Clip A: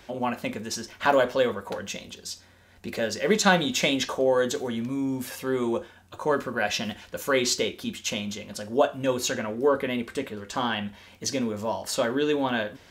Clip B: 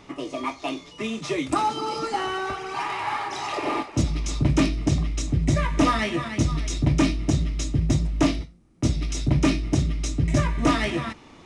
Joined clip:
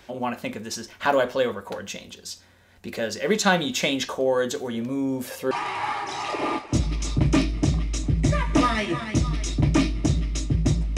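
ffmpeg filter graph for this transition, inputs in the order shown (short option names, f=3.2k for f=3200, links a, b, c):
-filter_complex "[0:a]asettb=1/sr,asplit=3[a][b][c];[a]atrim=end=4.744[d];[b]atrim=start=4.74:end=5.51,asetpts=PTS-STARTPTS,afade=t=in:d=0.004:c=qsin,afade=t=out:st=0.766:d=0.004:c=qsin,equalizer=f=520:t=o:w=0.95:g=9[e];[c]atrim=start=5.506[f];[d][e]acrossfade=d=0.004:c1=hsin:c2=qsin[g];[g][f]acrossfade=d=0.004:c1=qsin:c2=hsin,apad=whole_dur=10.97,atrim=end=10.97,atrim=end=5.512[h];[1:a]atrim=start=2.748:end=8.21[i];[h][i]acrossfade=d=0.004:c1=hsin:c2=hsin"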